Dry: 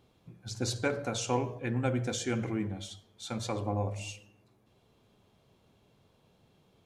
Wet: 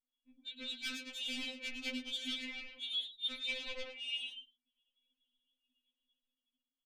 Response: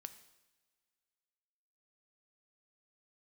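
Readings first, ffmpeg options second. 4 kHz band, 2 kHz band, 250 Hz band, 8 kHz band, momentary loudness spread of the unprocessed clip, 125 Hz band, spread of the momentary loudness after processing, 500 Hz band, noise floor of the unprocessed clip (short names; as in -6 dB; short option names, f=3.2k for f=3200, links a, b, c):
+5.5 dB, -1.0 dB, -13.5 dB, -13.5 dB, 12 LU, under -40 dB, 7 LU, -18.5 dB, -68 dBFS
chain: -filter_complex "[0:a]aresample=8000,aresample=44100,acrossover=split=260[a][b];[b]dynaudnorm=f=100:g=17:m=3.5dB[c];[a][c]amix=inputs=2:normalize=0,highpass=f=94:w=0.5412,highpass=f=94:w=1.3066,flanger=delay=4:depth=1.7:regen=-6:speed=0.89:shape=sinusoidal,asoftclip=type=tanh:threshold=-35.5dB,firequalizer=gain_entry='entry(170,0);entry(750,-17);entry(2500,11)':delay=0.05:min_phase=1,asplit=5[d][e][f][g][h];[e]adelay=109,afreqshift=120,volume=-8dB[i];[f]adelay=218,afreqshift=240,volume=-16.2dB[j];[g]adelay=327,afreqshift=360,volume=-24.4dB[k];[h]adelay=436,afreqshift=480,volume=-32.5dB[l];[d][i][j][k][l]amix=inputs=5:normalize=0,areverse,acompressor=threshold=-42dB:ratio=16,areverse,anlmdn=0.001,equalizer=f=420:w=0.4:g=-9.5,afftfilt=real='re*3.46*eq(mod(b,12),0)':imag='im*3.46*eq(mod(b,12),0)':win_size=2048:overlap=0.75,volume=10dB"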